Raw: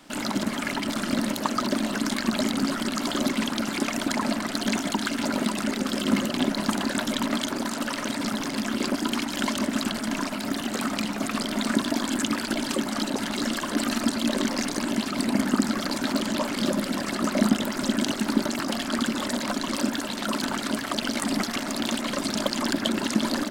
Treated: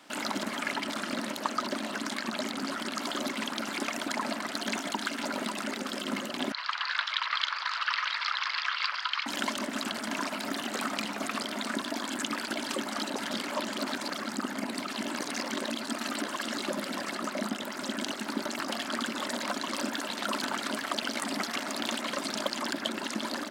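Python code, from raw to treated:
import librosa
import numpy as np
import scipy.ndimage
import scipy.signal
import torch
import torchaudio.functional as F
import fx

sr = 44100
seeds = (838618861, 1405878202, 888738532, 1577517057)

y = fx.doppler_dist(x, sr, depth_ms=0.1, at=(0.61, 2.99))
y = fx.ellip_bandpass(y, sr, low_hz=1100.0, high_hz=4700.0, order=3, stop_db=80, at=(6.52, 9.26))
y = fx.edit(y, sr, fx.reverse_span(start_s=13.31, length_s=3.37), tone=tone)
y = fx.high_shelf(y, sr, hz=4300.0, db=-5.5)
y = fx.rider(y, sr, range_db=10, speed_s=0.5)
y = fx.highpass(y, sr, hz=600.0, slope=6)
y = F.gain(torch.from_numpy(y), -1.5).numpy()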